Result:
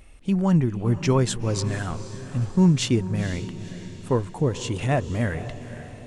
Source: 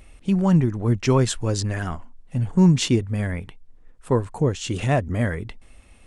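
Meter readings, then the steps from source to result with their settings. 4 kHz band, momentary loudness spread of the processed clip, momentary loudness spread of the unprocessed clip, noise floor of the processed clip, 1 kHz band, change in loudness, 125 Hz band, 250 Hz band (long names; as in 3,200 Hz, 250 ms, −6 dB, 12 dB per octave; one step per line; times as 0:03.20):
−1.5 dB, 15 LU, 14 LU, −42 dBFS, −1.5 dB, −2.0 dB, −1.5 dB, −1.5 dB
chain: feedback delay with all-pass diffusion 490 ms, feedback 52%, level −13 dB
level −2 dB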